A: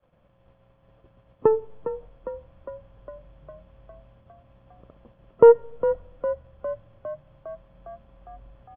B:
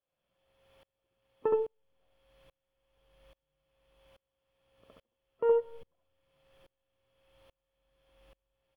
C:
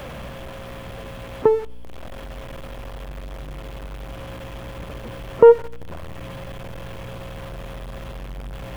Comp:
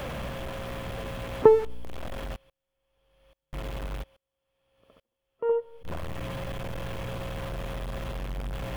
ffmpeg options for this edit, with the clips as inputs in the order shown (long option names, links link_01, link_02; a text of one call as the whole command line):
ffmpeg -i take0.wav -i take1.wav -i take2.wav -filter_complex "[1:a]asplit=2[link_01][link_02];[2:a]asplit=3[link_03][link_04][link_05];[link_03]atrim=end=2.362[link_06];[link_01]atrim=start=2.358:end=3.532[link_07];[link_04]atrim=start=3.528:end=4.04[link_08];[link_02]atrim=start=4.02:end=5.86[link_09];[link_05]atrim=start=5.84[link_10];[link_06][link_07]acrossfade=duration=0.004:curve1=hsin:curve2=hsin[link_11];[link_11][link_08]acrossfade=duration=0.004:curve1=hsin:curve2=hsin[link_12];[link_12][link_09]acrossfade=duration=0.02:curve1=tri:curve2=tri[link_13];[link_13][link_10]acrossfade=duration=0.02:curve1=tri:curve2=tri" out.wav